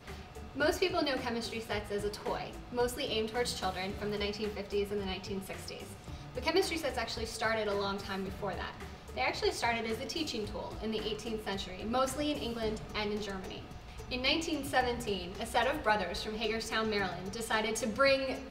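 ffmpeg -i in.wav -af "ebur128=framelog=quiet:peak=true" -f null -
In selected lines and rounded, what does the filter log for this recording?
Integrated loudness:
  I:         -34.1 LUFS
  Threshold: -44.3 LUFS
Loudness range:
  LRA:         3.3 LU
  Threshold: -54.7 LUFS
  LRA low:   -36.0 LUFS
  LRA high:  -32.7 LUFS
True peak:
  Peak:      -15.5 dBFS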